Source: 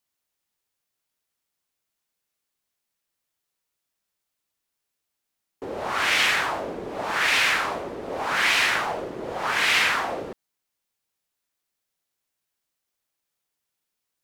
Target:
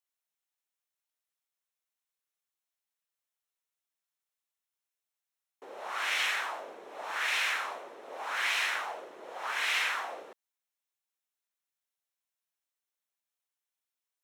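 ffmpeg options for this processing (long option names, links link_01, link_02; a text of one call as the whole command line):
ffmpeg -i in.wav -af "highpass=590,bandreject=frequency=4700:width=9.2,volume=-9dB" out.wav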